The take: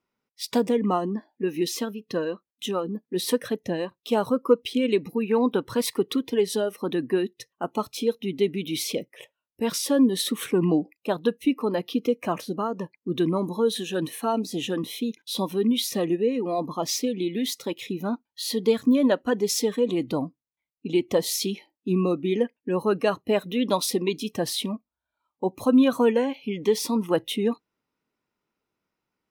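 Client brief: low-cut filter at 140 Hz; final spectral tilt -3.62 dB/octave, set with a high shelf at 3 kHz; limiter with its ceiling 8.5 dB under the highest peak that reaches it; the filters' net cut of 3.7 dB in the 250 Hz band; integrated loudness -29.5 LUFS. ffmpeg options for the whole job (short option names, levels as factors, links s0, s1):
-af "highpass=140,equalizer=f=250:t=o:g=-4,highshelf=f=3000:g=8,volume=0.794,alimiter=limit=0.133:level=0:latency=1"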